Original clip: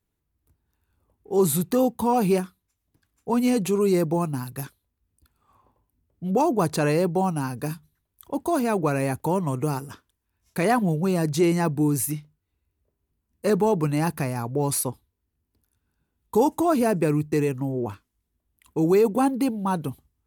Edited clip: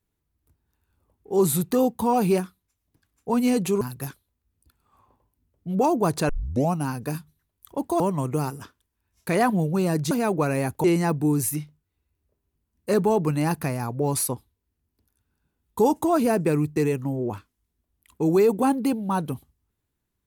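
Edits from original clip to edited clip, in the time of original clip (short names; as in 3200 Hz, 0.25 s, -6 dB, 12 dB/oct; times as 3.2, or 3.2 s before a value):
3.81–4.37 cut
6.85 tape start 0.44 s
8.56–9.29 move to 11.4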